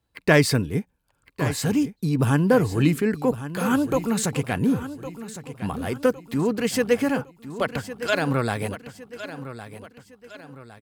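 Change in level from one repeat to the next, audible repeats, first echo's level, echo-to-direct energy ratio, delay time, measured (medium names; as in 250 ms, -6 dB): -7.5 dB, 4, -13.0 dB, -12.0 dB, 1109 ms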